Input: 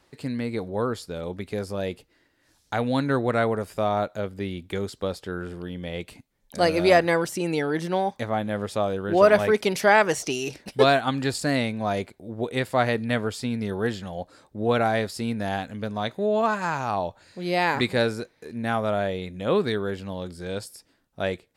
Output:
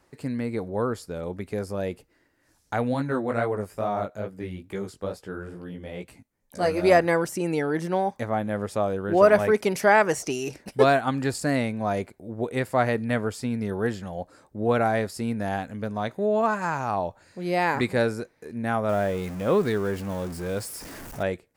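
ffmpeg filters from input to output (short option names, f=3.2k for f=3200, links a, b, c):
-filter_complex "[0:a]asplit=3[a][b][c];[a]afade=t=out:st=2.93:d=0.02[d];[b]flanger=delay=15:depth=6:speed=2.3,afade=t=in:st=2.93:d=0.02,afade=t=out:st=6.82:d=0.02[e];[c]afade=t=in:st=6.82:d=0.02[f];[d][e][f]amix=inputs=3:normalize=0,asettb=1/sr,asplit=3[g][h][i];[g]atrim=end=18.894[j];[h]atrim=start=18.89:end=21.23,asetpts=PTS-STARTPTS,afade=t=in:d=0.004:c=qsin,afade=t=out:st=2.336:d=0.004:c=qsin,aeval=exprs='val(0)+0.5*0.0211*sgn(val(0))':c=same[k];[i]atrim=start=21.226[l];[j][k]acrossfade=d=0.004:c1=hsin:c2=qsin[m];[m][l]acrossfade=d=0.004:c1=qsin:c2=hsin,equalizer=f=3.6k:w=1.5:g=-8.5"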